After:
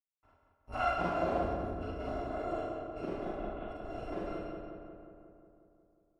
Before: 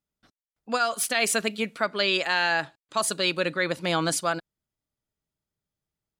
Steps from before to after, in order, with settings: bit-reversed sample order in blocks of 256 samples; 3.25–3.68 s: steep low-pass 3.8 kHz 96 dB/octave; in parallel at -3 dB: peak limiter -19.5 dBFS, peak gain reduction 9 dB; on the sum: bit crusher 10-bit; on a send: filtered feedback delay 180 ms, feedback 68%, low-pass 2.6 kHz, level -4 dB; on the sum: low-pass sweep 930 Hz -> 440 Hz, 0.55–1.65 s; Schroeder reverb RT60 0.79 s, combs from 33 ms, DRR -4.5 dB; trim -3 dB

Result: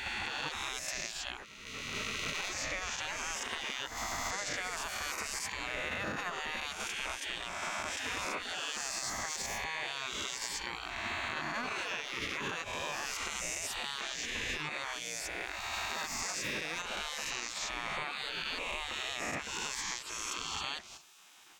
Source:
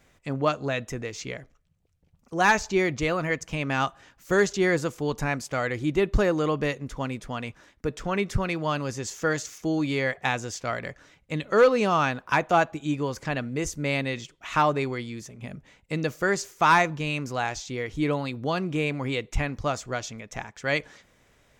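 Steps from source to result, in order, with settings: reverse spectral sustain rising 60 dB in 1.75 s; in parallel at 0 dB: level held to a coarse grid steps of 10 dB; on the sum: spectral gate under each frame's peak -15 dB weak; peak limiter -16.5 dBFS, peak gain reduction 9.5 dB; compression 6:1, threshold -36 dBFS, peak gain reduction 13 dB; trim +1.5 dB

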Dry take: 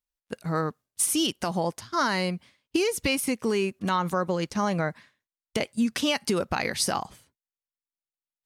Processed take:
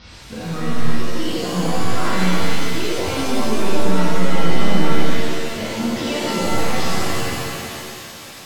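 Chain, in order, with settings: jump at every zero crossing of -26.5 dBFS; reverse; upward compressor, threshold -31 dBFS; reverse; high-pass 58 Hz; tone controls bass +11 dB, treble 0 dB; saturation -15 dBFS, distortion -15 dB; steep low-pass 5.6 kHz 72 dB/octave; on a send: thinning echo 304 ms, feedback 61%, high-pass 540 Hz, level -7 dB; on the sum: pitch-shifted reverb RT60 1.7 s, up +7 st, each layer -2 dB, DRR -8.5 dB; trim -10.5 dB

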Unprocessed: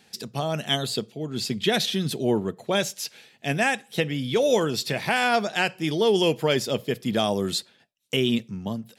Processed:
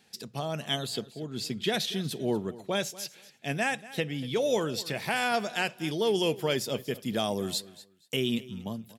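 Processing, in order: treble shelf 10 kHz +2 dB, from 4.95 s +9.5 dB; feedback delay 237 ms, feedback 20%, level -18.5 dB; trim -6 dB

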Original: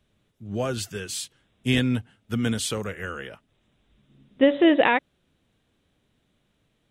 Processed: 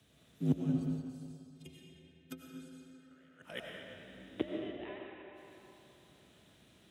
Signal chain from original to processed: chunks repeated in reverse 180 ms, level -7.5 dB; treble shelf 3.2 kHz +8 dB; inverted gate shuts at -26 dBFS, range -36 dB; frequency shift +53 Hz; 0.72–3.11 s: inharmonic resonator 77 Hz, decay 0.33 s, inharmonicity 0.03; reverberation RT60 3.2 s, pre-delay 55 ms, DRR -2.5 dB; upward expansion 1.5:1, over -51 dBFS; trim +9 dB

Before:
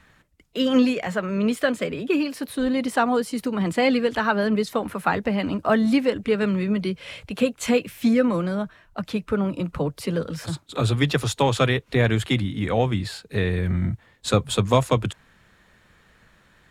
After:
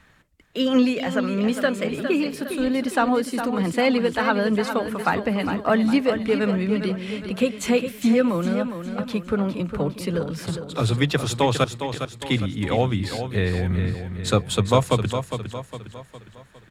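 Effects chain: 11.64–12.22 s: inverted gate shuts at -20 dBFS, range -31 dB; feedback delay 408 ms, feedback 45%, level -8.5 dB

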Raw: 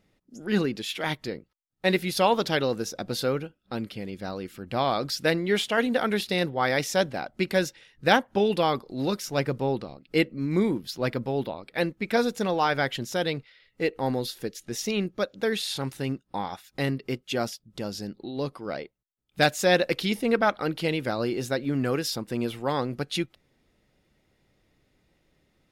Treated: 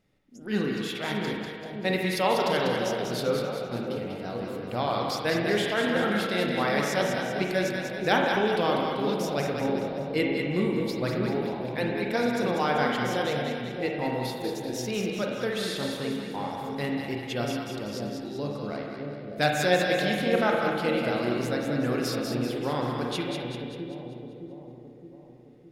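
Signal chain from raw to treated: two-band feedback delay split 690 Hz, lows 616 ms, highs 194 ms, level -5 dB; spring tank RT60 1.6 s, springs 33/41/48 ms, chirp 45 ms, DRR 0.5 dB; trim -4.5 dB

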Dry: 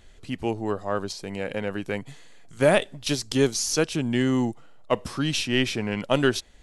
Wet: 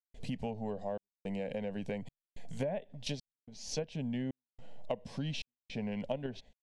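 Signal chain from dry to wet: low-pass that closes with the level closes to 2 kHz, closed at -17 dBFS; peaking EQ 95 Hz +11 dB 0.55 oct; static phaser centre 340 Hz, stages 6; in parallel at -2 dB: level held to a coarse grid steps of 23 dB; on the sum: treble shelf 3.5 kHz -10.5 dB; compression 8:1, threshold -36 dBFS, peak gain reduction 22.5 dB; trance gate ".xxxxxx." 108 bpm -60 dB; gate with hold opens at -47 dBFS; trim +2 dB

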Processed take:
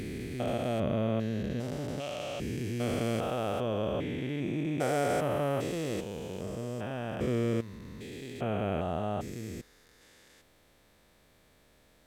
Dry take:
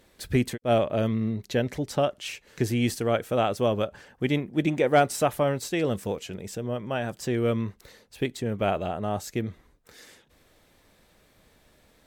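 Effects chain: spectrogram pixelated in time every 400 ms; trim -1.5 dB

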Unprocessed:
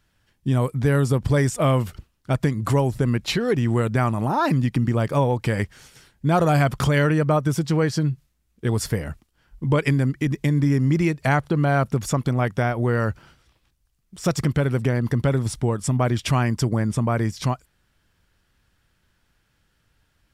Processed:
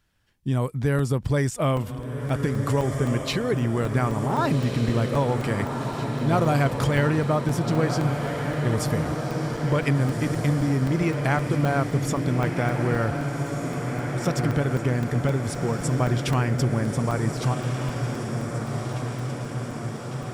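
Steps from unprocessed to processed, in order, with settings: echo that smears into a reverb 1555 ms, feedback 70%, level -5.5 dB; crackling interface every 0.26 s, samples 128, zero, from 0.99 s; trim -3.5 dB

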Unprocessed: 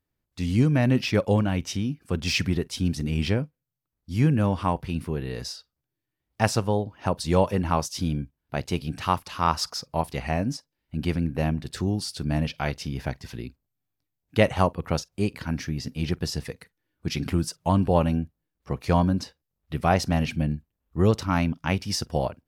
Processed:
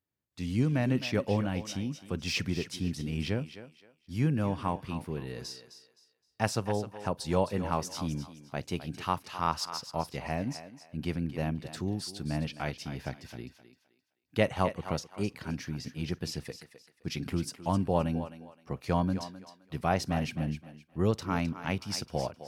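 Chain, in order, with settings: high-pass 85 Hz; thinning echo 260 ms, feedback 29%, high-pass 360 Hz, level -11 dB; trim -6.5 dB

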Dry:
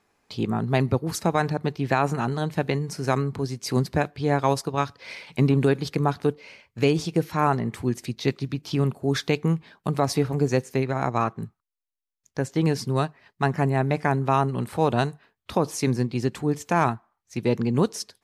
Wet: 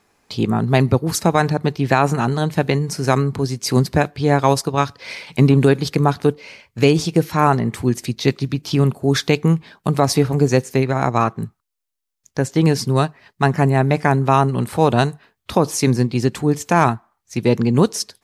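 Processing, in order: tone controls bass +1 dB, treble +3 dB; trim +6.5 dB

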